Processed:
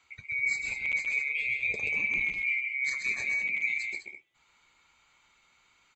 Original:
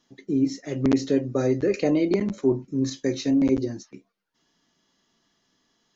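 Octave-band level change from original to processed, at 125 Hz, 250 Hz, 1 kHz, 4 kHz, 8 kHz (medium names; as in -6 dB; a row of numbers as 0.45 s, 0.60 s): under -20 dB, -33.5 dB, under -10 dB, -5.0 dB, no reading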